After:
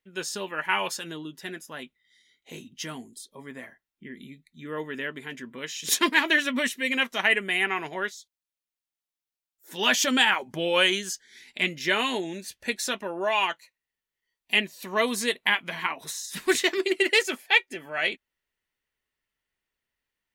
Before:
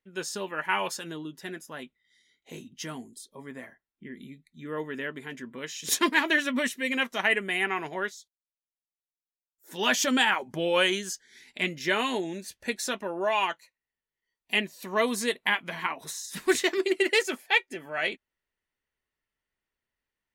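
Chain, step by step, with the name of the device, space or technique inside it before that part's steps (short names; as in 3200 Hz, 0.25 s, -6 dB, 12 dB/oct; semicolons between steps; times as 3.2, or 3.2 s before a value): presence and air boost (bell 3000 Hz +4 dB 1.6 oct; high shelf 9900 Hz +3.5 dB)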